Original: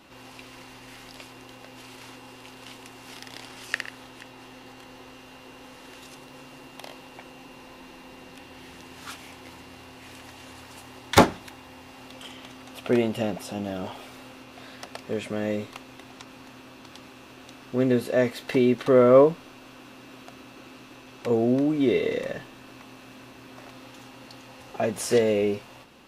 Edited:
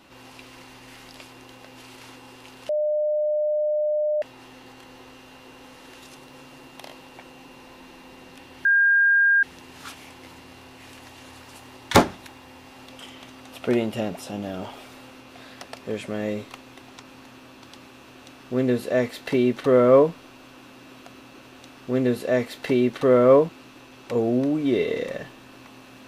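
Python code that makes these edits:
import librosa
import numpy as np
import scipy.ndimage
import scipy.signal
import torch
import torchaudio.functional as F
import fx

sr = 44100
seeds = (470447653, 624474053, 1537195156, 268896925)

y = fx.edit(x, sr, fx.bleep(start_s=2.69, length_s=1.53, hz=603.0, db=-20.0),
    fx.insert_tone(at_s=8.65, length_s=0.78, hz=1610.0, db=-14.5),
    fx.duplicate(start_s=17.27, length_s=2.07, to_s=20.64), tone=tone)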